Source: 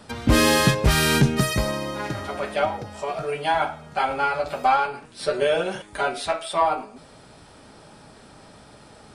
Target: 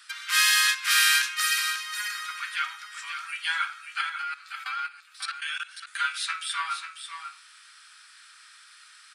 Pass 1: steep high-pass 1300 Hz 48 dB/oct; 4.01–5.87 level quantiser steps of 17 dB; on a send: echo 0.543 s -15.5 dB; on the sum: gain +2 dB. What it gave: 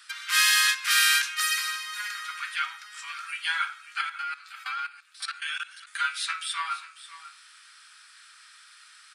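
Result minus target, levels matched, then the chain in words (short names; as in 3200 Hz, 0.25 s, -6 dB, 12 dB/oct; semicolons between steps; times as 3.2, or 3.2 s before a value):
echo-to-direct -7 dB
steep high-pass 1300 Hz 48 dB/oct; 4.01–5.87 level quantiser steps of 17 dB; on a send: echo 0.543 s -8.5 dB; on the sum: gain +2 dB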